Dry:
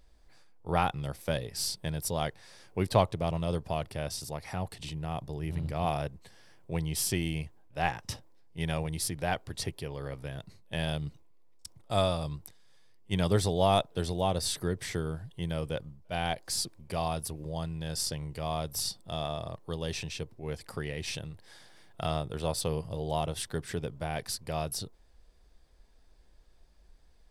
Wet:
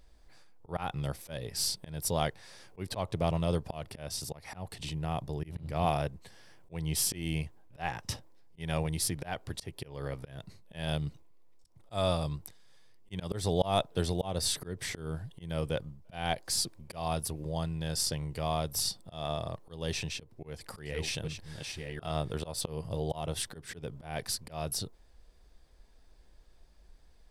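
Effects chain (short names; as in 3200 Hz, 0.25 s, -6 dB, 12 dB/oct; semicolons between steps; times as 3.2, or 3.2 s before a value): 20.08–22.33 reverse delay 0.658 s, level -5.5 dB; auto swell 0.21 s; gain +1.5 dB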